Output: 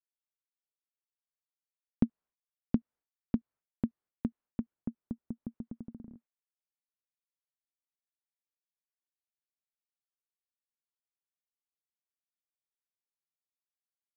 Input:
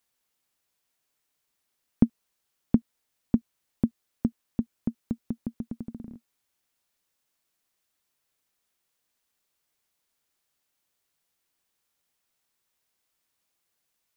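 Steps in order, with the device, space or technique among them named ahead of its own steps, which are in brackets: hearing-loss simulation (LPF 1500 Hz 12 dB/oct; expander -49 dBFS); 4.74–5.43 air absorption 460 m; gain -7 dB

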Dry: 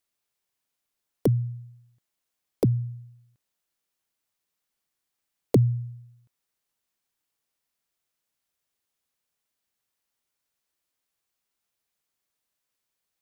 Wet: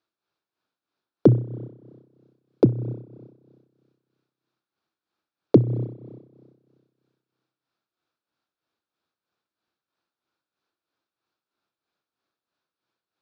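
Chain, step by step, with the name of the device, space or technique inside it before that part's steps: combo amplifier with spring reverb and tremolo (spring tank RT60 1.8 s, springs 31 ms, chirp 45 ms, DRR 12 dB; tremolo 3.1 Hz, depth 65%; speaker cabinet 100–4200 Hz, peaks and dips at 330 Hz +7 dB, 1400 Hz +5 dB, 2000 Hz -10 dB, 3000 Hz -7 dB); gain +6.5 dB

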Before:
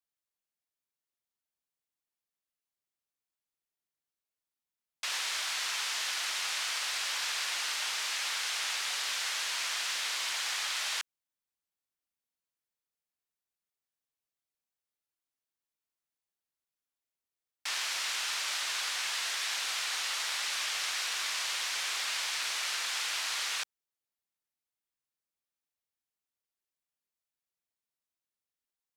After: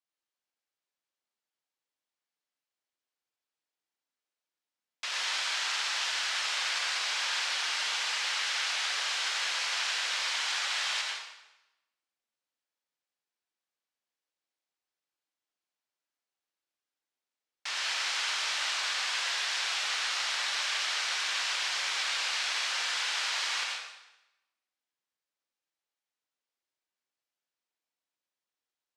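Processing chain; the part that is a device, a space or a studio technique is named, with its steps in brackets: supermarket ceiling speaker (BPF 260–6300 Hz; reverb RT60 0.95 s, pre-delay 82 ms, DRR -1 dB)

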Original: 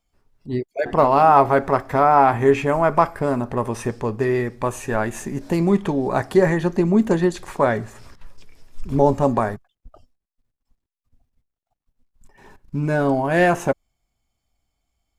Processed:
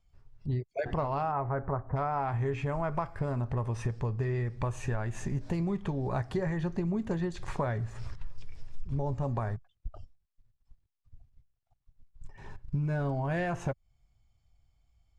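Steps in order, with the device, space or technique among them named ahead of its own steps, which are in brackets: jukebox (LPF 6600 Hz 12 dB/oct; resonant low shelf 170 Hz +10 dB, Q 1.5; compressor 6:1, threshold -26 dBFS, peak gain reduction 17 dB); 1.31–1.95 LPF 2400 Hz -> 1100 Hz 24 dB/oct; gain -3 dB

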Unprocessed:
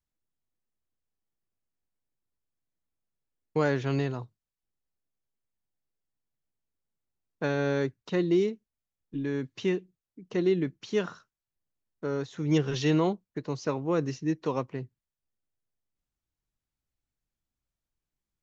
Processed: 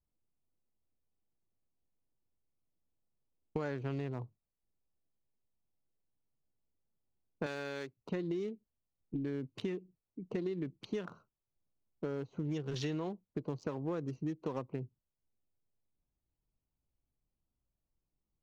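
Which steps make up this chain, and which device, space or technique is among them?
Wiener smoothing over 25 samples; serial compression, leveller first (compressor 2.5:1, threshold -27 dBFS, peak gain reduction 5.5 dB; compressor 5:1, threshold -38 dBFS, peak gain reduction 12 dB); 7.46–7.97 tilt +3.5 dB/oct; gain +3 dB

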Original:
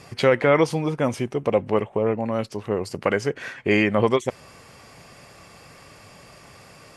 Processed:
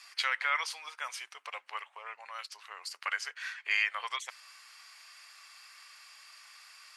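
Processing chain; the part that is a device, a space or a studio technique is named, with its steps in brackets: headphones lying on a table (HPF 1200 Hz 24 dB/oct; bell 4400 Hz +5 dB 0.54 oct); gain -4.5 dB

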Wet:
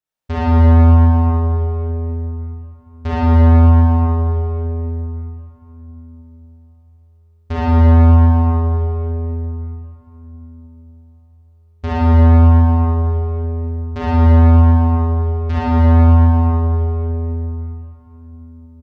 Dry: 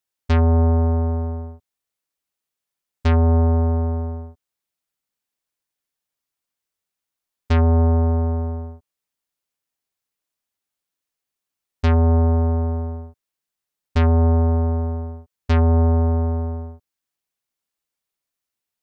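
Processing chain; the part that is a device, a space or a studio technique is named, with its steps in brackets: early reflections 55 ms -7.5 dB, 72 ms -5 dB; swimming-pool hall (reverb RT60 3.9 s, pre-delay 27 ms, DRR -9 dB; high shelf 3100 Hz -8 dB); gain -4.5 dB

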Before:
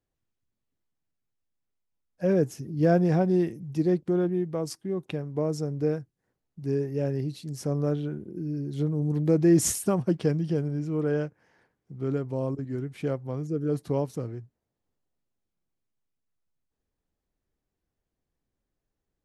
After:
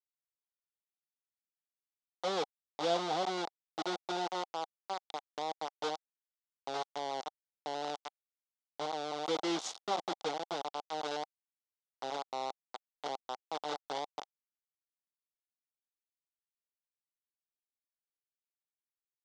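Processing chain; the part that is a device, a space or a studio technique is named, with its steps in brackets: hand-held game console (bit-crush 4-bit; speaker cabinet 500–5900 Hz, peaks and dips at 790 Hz +9 dB, 1700 Hz -10 dB, 2500 Hz -8 dB, 3600 Hz +5 dB); gain -8.5 dB

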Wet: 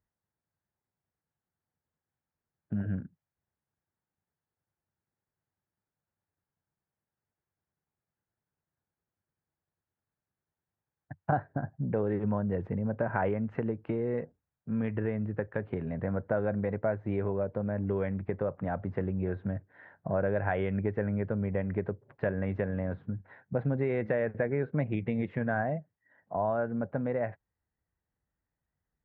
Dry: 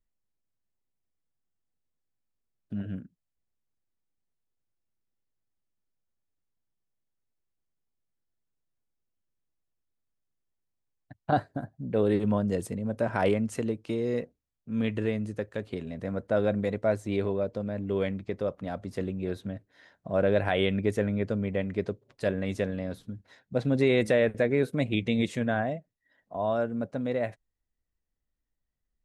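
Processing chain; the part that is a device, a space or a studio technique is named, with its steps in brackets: bass amplifier (compressor 3:1, threshold -32 dBFS, peak gain reduction 10 dB; speaker cabinet 66–2000 Hz, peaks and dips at 92 Hz +6 dB, 150 Hz +5 dB, 270 Hz -3 dB, 850 Hz +5 dB, 1600 Hz +4 dB); gain +3 dB

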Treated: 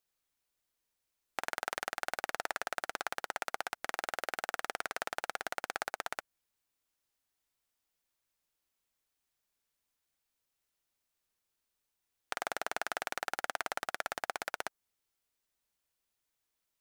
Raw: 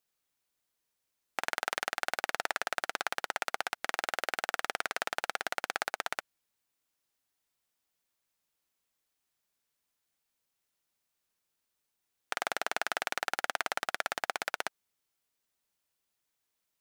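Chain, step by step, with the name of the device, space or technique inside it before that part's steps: dynamic EQ 3100 Hz, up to -4 dB, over -49 dBFS, Q 0.72; low shelf boost with a cut just above (low shelf 81 Hz +7.5 dB; bell 160 Hz -3 dB 0.76 oct); gain -2 dB

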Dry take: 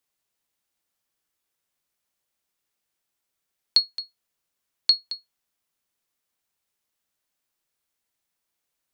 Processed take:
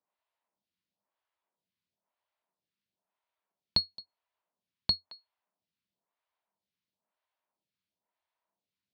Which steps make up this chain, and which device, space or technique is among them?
vibe pedal into a guitar amplifier (photocell phaser 1 Hz; tube stage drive 13 dB, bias 0.7; speaker cabinet 76–4400 Hz, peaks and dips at 89 Hz +8 dB, 190 Hz +10 dB, 640 Hz +8 dB, 960 Hz +10 dB)

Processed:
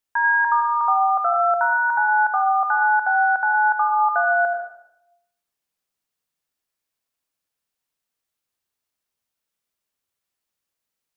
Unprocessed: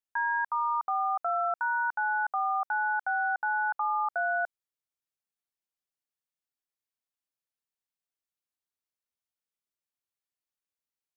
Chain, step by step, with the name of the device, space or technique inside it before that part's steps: bathroom (reverb RT60 0.75 s, pre-delay 78 ms, DRR 3.5 dB); gain +8.5 dB

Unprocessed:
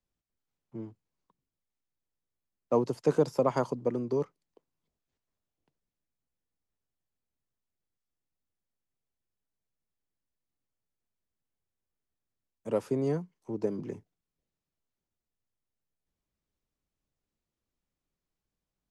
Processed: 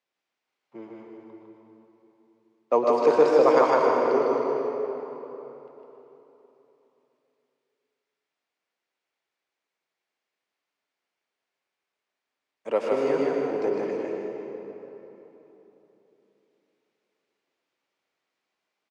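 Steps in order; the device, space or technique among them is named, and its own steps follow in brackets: station announcement (BPF 490–4700 Hz; bell 2200 Hz +4.5 dB 0.56 oct; loudspeakers at several distances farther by 41 m -11 dB, 53 m -3 dB; reverb RT60 3.6 s, pre-delay 0.103 s, DRR 0 dB); gain +7.5 dB

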